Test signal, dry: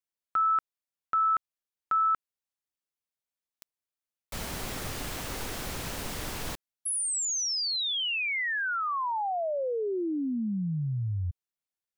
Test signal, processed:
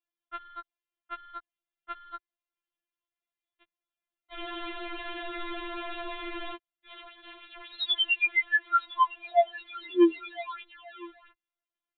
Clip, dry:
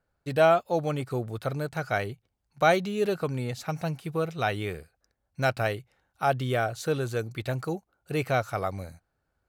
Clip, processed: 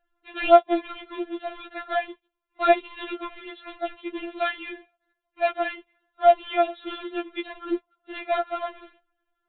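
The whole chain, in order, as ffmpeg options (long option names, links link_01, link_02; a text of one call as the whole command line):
ffmpeg -i in.wav -filter_complex "[0:a]acrossover=split=140[link_01][link_02];[link_01]acompressor=threshold=-50dB:ratio=16:attack=38:release=80:knee=6:detection=peak[link_03];[link_03][link_02]amix=inputs=2:normalize=0,acrusher=bits=2:mode=log:mix=0:aa=0.000001,aresample=8000,aresample=44100,afftfilt=real='re*4*eq(mod(b,16),0)':imag='im*4*eq(mod(b,16),0)':win_size=2048:overlap=0.75,volume=4dB" out.wav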